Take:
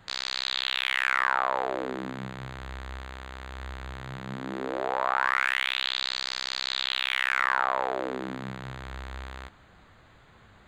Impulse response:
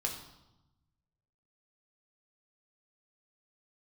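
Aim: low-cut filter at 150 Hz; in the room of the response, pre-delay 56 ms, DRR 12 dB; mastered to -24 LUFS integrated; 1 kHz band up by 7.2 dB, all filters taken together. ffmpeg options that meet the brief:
-filter_complex "[0:a]highpass=150,equalizer=f=1000:t=o:g=9,asplit=2[s0][s1];[1:a]atrim=start_sample=2205,adelay=56[s2];[s1][s2]afir=irnorm=-1:irlink=0,volume=0.188[s3];[s0][s3]amix=inputs=2:normalize=0,volume=0.944"

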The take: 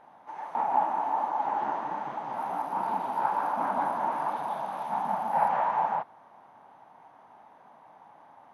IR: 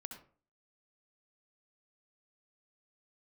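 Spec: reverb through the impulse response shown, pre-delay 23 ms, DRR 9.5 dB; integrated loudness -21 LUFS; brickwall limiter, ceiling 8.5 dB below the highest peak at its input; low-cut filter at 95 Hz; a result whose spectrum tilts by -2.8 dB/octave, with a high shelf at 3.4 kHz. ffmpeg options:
-filter_complex "[0:a]highpass=95,highshelf=f=3400:g=7.5,alimiter=limit=0.0944:level=0:latency=1,asplit=2[s0][s1];[1:a]atrim=start_sample=2205,adelay=23[s2];[s1][s2]afir=irnorm=-1:irlink=0,volume=0.531[s3];[s0][s3]amix=inputs=2:normalize=0,volume=2.82"

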